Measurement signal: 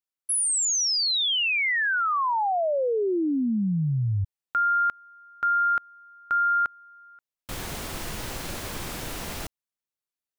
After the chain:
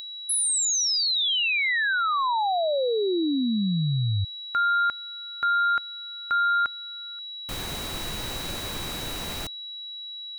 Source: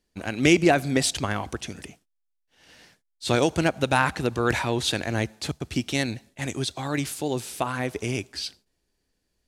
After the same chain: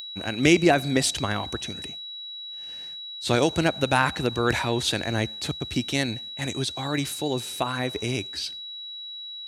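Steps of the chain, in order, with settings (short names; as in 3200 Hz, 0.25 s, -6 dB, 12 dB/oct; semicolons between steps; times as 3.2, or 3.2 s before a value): whine 3900 Hz -35 dBFS; upward compressor, threshold -47 dBFS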